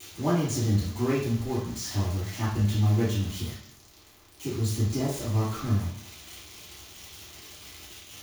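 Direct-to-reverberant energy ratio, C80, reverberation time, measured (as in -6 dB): -11.0 dB, 7.0 dB, 0.60 s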